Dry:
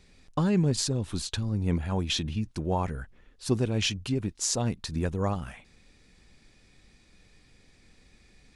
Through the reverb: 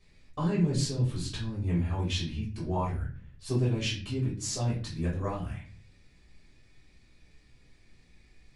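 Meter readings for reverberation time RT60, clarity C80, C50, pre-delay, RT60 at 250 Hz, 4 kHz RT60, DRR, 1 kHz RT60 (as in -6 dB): 0.45 s, 12.0 dB, 7.0 dB, 3 ms, 0.75 s, 0.35 s, -7.0 dB, 0.35 s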